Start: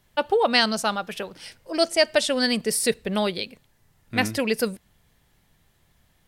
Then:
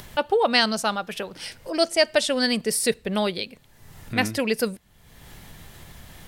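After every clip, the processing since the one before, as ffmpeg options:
ffmpeg -i in.wav -af "acompressor=mode=upward:threshold=-27dB:ratio=2.5" out.wav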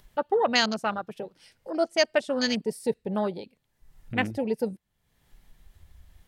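ffmpeg -i in.wav -af "afwtdn=0.0447,volume=-3dB" out.wav

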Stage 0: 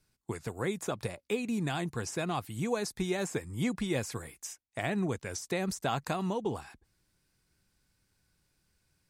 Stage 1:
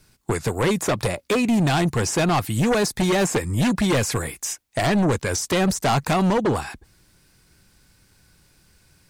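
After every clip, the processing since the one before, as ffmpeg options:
ffmpeg -i in.wav -filter_complex "[0:a]deesser=0.85,asplit=2[link_01][link_02];[link_02]aeval=exprs='0.126*sin(PI/2*3.98*val(0)/0.126)':channel_layout=same,volume=-6dB[link_03];[link_01][link_03]amix=inputs=2:normalize=0,volume=4.5dB" out.wav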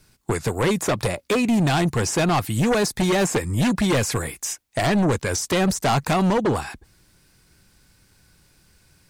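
ffmpeg -i in.wav -af anull out.wav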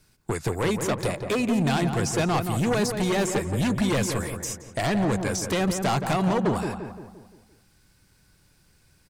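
ffmpeg -i in.wav -filter_complex "[0:a]asplit=2[link_01][link_02];[link_02]adelay=173,lowpass=frequency=1500:poles=1,volume=-6dB,asplit=2[link_03][link_04];[link_04]adelay=173,lowpass=frequency=1500:poles=1,volume=0.51,asplit=2[link_05][link_06];[link_06]adelay=173,lowpass=frequency=1500:poles=1,volume=0.51,asplit=2[link_07][link_08];[link_08]adelay=173,lowpass=frequency=1500:poles=1,volume=0.51,asplit=2[link_09][link_10];[link_10]adelay=173,lowpass=frequency=1500:poles=1,volume=0.51,asplit=2[link_11][link_12];[link_12]adelay=173,lowpass=frequency=1500:poles=1,volume=0.51[link_13];[link_01][link_03][link_05][link_07][link_09][link_11][link_13]amix=inputs=7:normalize=0,volume=-4.5dB" out.wav

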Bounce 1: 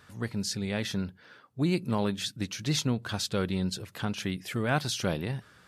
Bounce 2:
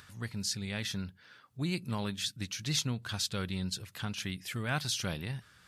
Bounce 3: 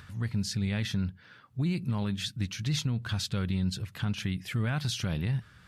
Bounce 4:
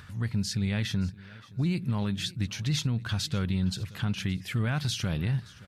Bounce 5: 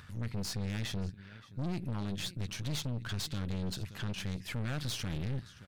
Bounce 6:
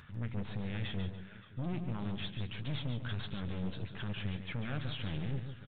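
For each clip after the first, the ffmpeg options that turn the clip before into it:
ffmpeg -i in.wav -af "equalizer=frequency=430:width=0.42:gain=-10.5,acompressor=mode=upward:threshold=-51dB:ratio=2.5" out.wav
ffmpeg -i in.wav -af "bass=frequency=250:gain=8,treble=frequency=4000:gain=-7,alimiter=limit=-24dB:level=0:latency=1:release=45,volume=3dB" out.wav
ffmpeg -i in.wav -af "aecho=1:1:572|1144:0.0944|0.0302,volume=1.5dB" out.wav
ffmpeg -i in.wav -af "aeval=exprs='(tanh(44.7*val(0)+0.75)-tanh(0.75))/44.7':channel_layout=same" out.wav
ffmpeg -i in.wav -af "aresample=8000,aresample=44100,aecho=1:1:144|288|432:0.398|0.115|0.0335,flanger=delay=4.3:depth=5.8:regen=-67:speed=1.5:shape=triangular,volume=2.5dB" out.wav

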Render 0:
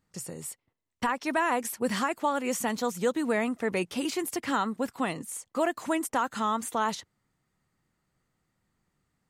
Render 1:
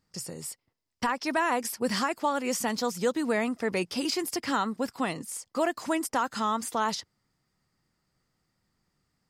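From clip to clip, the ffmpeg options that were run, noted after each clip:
ffmpeg -i in.wav -af "equalizer=frequency=5000:width=4.4:gain=12" out.wav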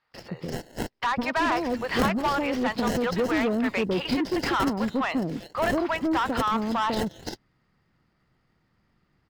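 ffmpeg -i in.wav -filter_complex "[0:a]acrossover=split=590|4900[link_01][link_02][link_03];[link_01]adelay=150[link_04];[link_03]adelay=340[link_05];[link_04][link_02][link_05]amix=inputs=3:normalize=0,acrossover=split=4600[link_06][link_07];[link_06]asoftclip=type=tanh:threshold=-27.5dB[link_08];[link_07]acrusher=samples=37:mix=1:aa=0.000001[link_09];[link_08][link_09]amix=inputs=2:normalize=0,volume=8dB" out.wav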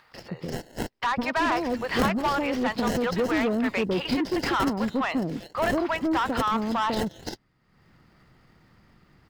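ffmpeg -i in.wav -af "acompressor=mode=upward:threshold=-46dB:ratio=2.5" out.wav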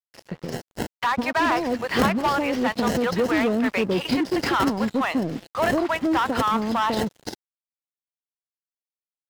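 ffmpeg -i in.wav -af "highpass=61,aeval=exprs='sgn(val(0))*max(abs(val(0))-0.00794,0)':channel_layout=same,volume=4dB" out.wav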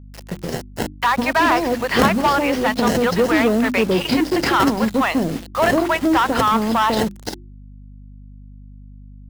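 ffmpeg -i in.wav -af "acrusher=bits=6:mix=0:aa=0.000001,bandreject=frequency=50:width_type=h:width=6,bandreject=frequency=100:width_type=h:width=6,bandreject=frequency=150:width_type=h:width=6,bandreject=frequency=200:width_type=h:width=6,bandreject=frequency=250:width_type=h:width=6,bandreject=frequency=300:width_type=h:width=6,bandreject=frequency=350:width_type=h:width=6,aeval=exprs='val(0)+0.00631*(sin(2*PI*50*n/s)+sin(2*PI*2*50*n/s)/2+sin(2*PI*3*50*n/s)/3+sin(2*PI*4*50*n/s)/4+sin(2*PI*5*50*n/s)/5)':channel_layout=same,volume=5.5dB" out.wav

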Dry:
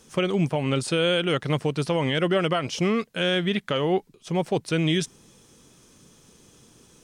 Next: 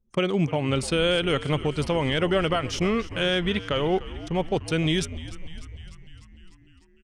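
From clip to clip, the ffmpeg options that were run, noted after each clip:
ffmpeg -i in.wav -filter_complex "[0:a]anlmdn=1,asplit=8[link_01][link_02][link_03][link_04][link_05][link_06][link_07][link_08];[link_02]adelay=299,afreqshift=-75,volume=-16dB[link_09];[link_03]adelay=598,afreqshift=-150,volume=-19.7dB[link_10];[link_04]adelay=897,afreqshift=-225,volume=-23.5dB[link_11];[link_05]adelay=1196,afreqshift=-300,volume=-27.2dB[link_12];[link_06]adelay=1495,afreqshift=-375,volume=-31dB[link_13];[link_07]adelay=1794,afreqshift=-450,volume=-34.7dB[link_14];[link_08]adelay=2093,afreqshift=-525,volume=-38.5dB[link_15];[link_01][link_09][link_10][link_11][link_12][link_13][link_14][link_15]amix=inputs=8:normalize=0,asubboost=boost=2.5:cutoff=97" out.wav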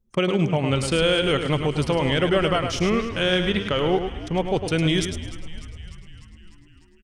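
ffmpeg -i in.wav -af "aecho=1:1:105|210|315:0.422|0.0886|0.0186,volume=2dB" out.wav

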